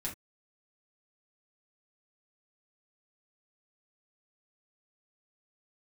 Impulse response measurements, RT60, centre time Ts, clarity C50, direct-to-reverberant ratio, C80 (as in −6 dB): non-exponential decay, 18 ms, 11.5 dB, −5.0 dB, 21.0 dB